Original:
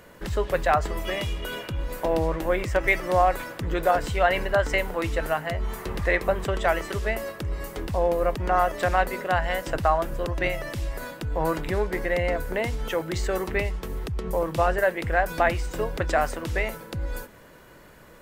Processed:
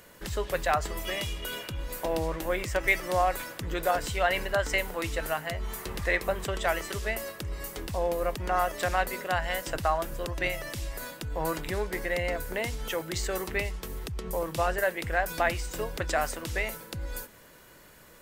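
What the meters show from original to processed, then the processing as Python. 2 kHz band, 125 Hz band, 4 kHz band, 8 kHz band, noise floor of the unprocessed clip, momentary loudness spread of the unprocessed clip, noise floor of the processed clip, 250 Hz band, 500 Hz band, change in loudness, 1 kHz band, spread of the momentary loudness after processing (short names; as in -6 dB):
-3.0 dB, -6.0 dB, 0.0 dB, +3.5 dB, -50 dBFS, 10 LU, -53 dBFS, -6.0 dB, -5.5 dB, -4.5 dB, -5.0 dB, 9 LU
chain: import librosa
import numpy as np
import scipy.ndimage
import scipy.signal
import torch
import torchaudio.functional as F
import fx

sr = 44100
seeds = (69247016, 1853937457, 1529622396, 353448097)

y = fx.high_shelf(x, sr, hz=2800.0, db=10.5)
y = y * 10.0 ** (-6.0 / 20.0)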